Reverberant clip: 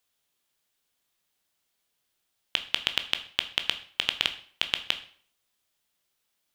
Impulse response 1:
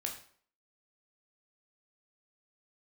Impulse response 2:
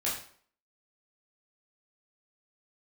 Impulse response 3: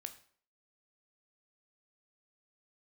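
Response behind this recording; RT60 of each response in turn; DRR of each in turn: 3; 0.55 s, 0.55 s, 0.55 s; 1.0 dB, -7.0 dB, 7.5 dB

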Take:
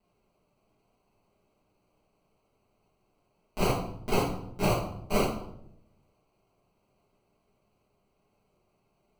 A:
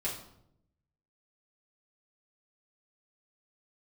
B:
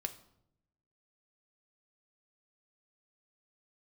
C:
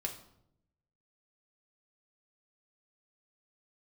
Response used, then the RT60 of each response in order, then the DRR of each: A; 0.75 s, 0.75 s, 0.75 s; -7.5 dB, 7.0 dB, 1.5 dB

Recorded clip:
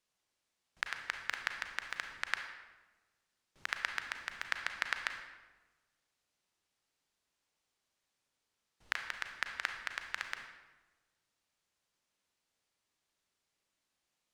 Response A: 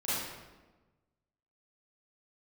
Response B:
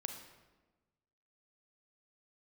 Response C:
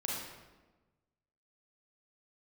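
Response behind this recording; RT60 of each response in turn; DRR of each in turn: B; 1.2 s, 1.2 s, 1.2 s; -12.5 dB, 5.0 dB, -4.0 dB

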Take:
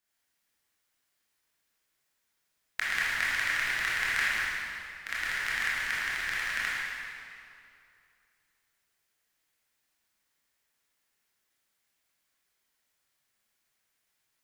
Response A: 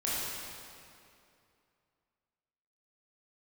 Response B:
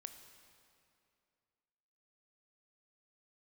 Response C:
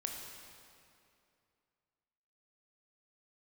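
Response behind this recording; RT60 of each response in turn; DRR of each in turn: A; 2.6 s, 2.5 s, 2.6 s; -8.5 dB, 7.5 dB, 1.0 dB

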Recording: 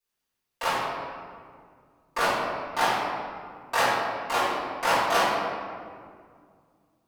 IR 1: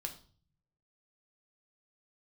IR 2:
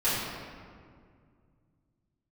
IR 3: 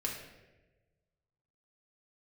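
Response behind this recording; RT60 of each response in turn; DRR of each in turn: 2; 0.45 s, 2.1 s, 1.2 s; 3.5 dB, -14.0 dB, -2.5 dB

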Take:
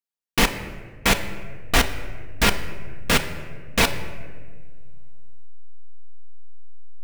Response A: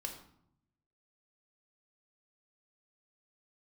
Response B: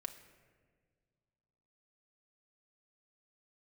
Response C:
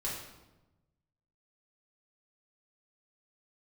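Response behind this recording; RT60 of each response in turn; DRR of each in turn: B; 0.70 s, 1.7 s, 1.0 s; 2.5 dB, 5.5 dB, -6.0 dB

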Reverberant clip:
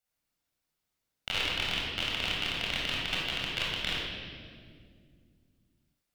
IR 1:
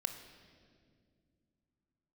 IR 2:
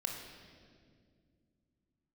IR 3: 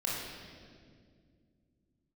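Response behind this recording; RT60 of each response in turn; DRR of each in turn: 3; 2.1 s, 2.1 s, 2.1 s; 7.5 dB, 1.5 dB, -5.0 dB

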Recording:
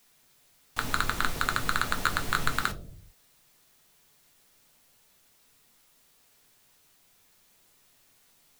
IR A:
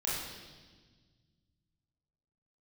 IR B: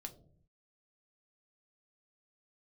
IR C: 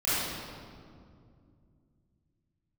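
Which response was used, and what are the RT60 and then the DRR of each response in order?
B; 1.4 s, 0.60 s, 2.3 s; -7.0 dB, 5.0 dB, -13.5 dB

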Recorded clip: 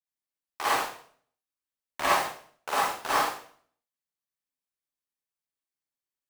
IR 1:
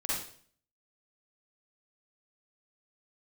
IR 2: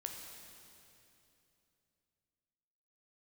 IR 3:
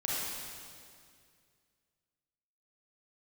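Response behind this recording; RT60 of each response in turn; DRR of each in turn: 1; 0.50 s, 2.9 s, 2.2 s; -8.5 dB, 2.0 dB, -6.5 dB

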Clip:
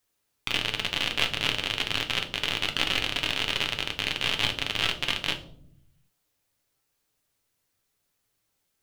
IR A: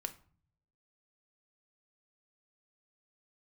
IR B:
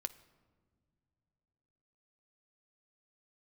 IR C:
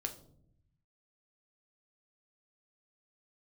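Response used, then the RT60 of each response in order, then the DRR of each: C; 0.45 s, no single decay rate, 0.70 s; 6.0 dB, 11.0 dB, 3.5 dB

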